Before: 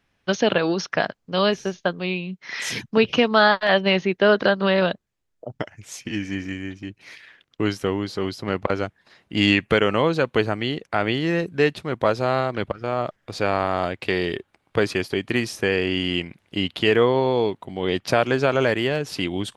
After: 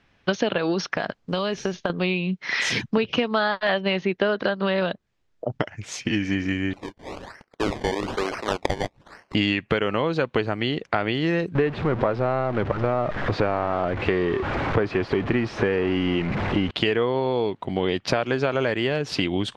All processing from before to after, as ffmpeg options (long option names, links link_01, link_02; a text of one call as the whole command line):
ffmpeg -i in.wav -filter_complex "[0:a]asettb=1/sr,asplit=3[link_01][link_02][link_03];[link_01]atrim=end=0.854[link_04];[link_02]atrim=start=0.85:end=1.9,asetpts=PTS-STARTPTS,afade=type=in:duration=0.004:curve=qsin,afade=type=out:start_time=1.046:duration=0.004:curve=qsin,acrusher=bits=9:mode=log:mix=0:aa=0.000001,acompressor=threshold=-26dB:ratio=6:attack=3.2:release=140:knee=1:detection=peak[link_05];[link_03]atrim=start=1.896[link_06];[link_04][link_05]acrossfade=duration=0.004:curve1=hsin:curve2=qsin[link_07];[link_07][link_06]acrossfade=duration=0.004:curve1=qsin:curve2=hsin,asettb=1/sr,asplit=3[link_08][link_09][link_10];[link_08]atrim=end=6.734[link_11];[link_09]atrim=start=6.73:end=9.35,asetpts=PTS-STARTPTS,afade=type=in:duration=0.004:curve=qsin,afade=type=out:start_time=2.616:duration=0.004:curve=qsin,highpass=550,acrusher=samples=23:mix=1:aa=0.000001:lfo=1:lforange=23:lforate=1.1[link_12];[link_10]atrim=start=9.346[link_13];[link_11][link_12]acrossfade=duration=0.004:curve1=hsin:curve2=qsin[link_14];[link_14][link_13]acrossfade=duration=0.004:curve1=qsin:curve2=hsin,asettb=1/sr,asplit=3[link_15][link_16][link_17];[link_15]atrim=end=11.554[link_18];[link_16]atrim=start=11.55:end=16.71,asetpts=PTS-STARTPTS,afade=type=in:duration=0.004:curve=qsin,afade=type=out:start_time=5.156:duration=0.004:curve=qsin,aeval=exprs='val(0)+0.5*0.0596*sgn(val(0))':channel_layout=same,lowpass=1600,aemphasis=mode=production:type=cd[link_19];[link_17]atrim=start=16.706[link_20];[link_18][link_19]acrossfade=duration=0.004:curve1=hsin:curve2=qsin[link_21];[link_21][link_20]acrossfade=duration=0.004:curve1=qsin:curve2=hsin,acompressor=threshold=-27dB:ratio=6,lowpass=5200,volume=7.5dB" out.wav